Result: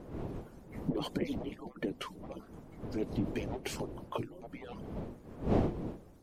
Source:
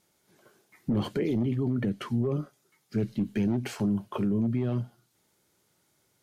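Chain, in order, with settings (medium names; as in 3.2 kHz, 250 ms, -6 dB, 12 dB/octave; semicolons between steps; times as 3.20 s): harmonic-percussive separation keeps percussive; wind noise 340 Hz -40 dBFS; dynamic bell 1.5 kHz, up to -6 dB, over -57 dBFS, Q 1.6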